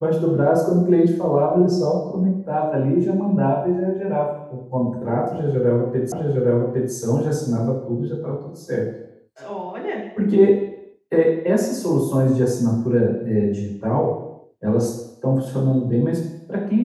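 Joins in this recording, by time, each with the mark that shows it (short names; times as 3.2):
6.12 repeat of the last 0.81 s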